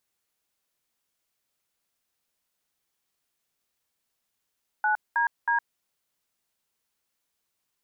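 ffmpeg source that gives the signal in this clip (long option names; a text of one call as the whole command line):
ffmpeg -f lavfi -i "aevalsrc='0.0668*clip(min(mod(t,0.318),0.112-mod(t,0.318))/0.002,0,1)*(eq(floor(t/0.318),0)*(sin(2*PI*852*mod(t,0.318))+sin(2*PI*1477*mod(t,0.318)))+eq(floor(t/0.318),1)*(sin(2*PI*941*mod(t,0.318))+sin(2*PI*1633*mod(t,0.318)))+eq(floor(t/0.318),2)*(sin(2*PI*941*mod(t,0.318))+sin(2*PI*1633*mod(t,0.318))))':duration=0.954:sample_rate=44100" out.wav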